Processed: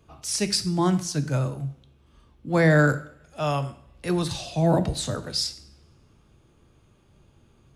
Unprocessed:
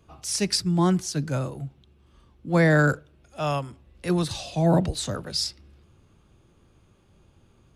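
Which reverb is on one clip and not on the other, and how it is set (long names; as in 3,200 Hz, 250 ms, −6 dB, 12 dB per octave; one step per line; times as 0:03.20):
coupled-rooms reverb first 0.55 s, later 1.6 s, from −23 dB, DRR 10 dB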